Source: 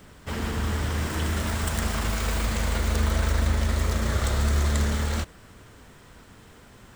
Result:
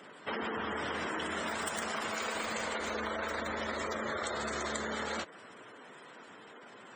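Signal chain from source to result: high-pass 350 Hz 12 dB/octave; spectral gate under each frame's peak -15 dB strong; compression, threshold -35 dBFS, peak gain reduction 7.5 dB; trim +2.5 dB

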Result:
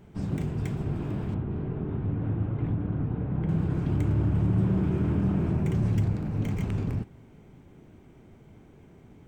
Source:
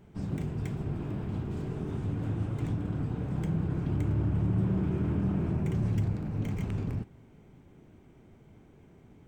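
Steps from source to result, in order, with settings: 1.34–3.49 s: distance through air 480 m; trim +3.5 dB

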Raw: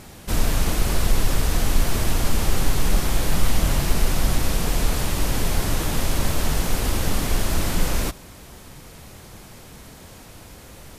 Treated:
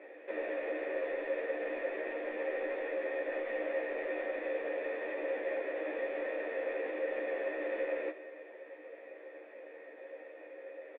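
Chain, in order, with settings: elliptic high-pass 290 Hz, stop band 40 dB; peak limiter -23.5 dBFS, peak gain reduction 7 dB; cascade formant filter e; doubling 13 ms -3 dB; reverberation RT60 1.5 s, pre-delay 5 ms, DRR 13 dB; trim +6.5 dB

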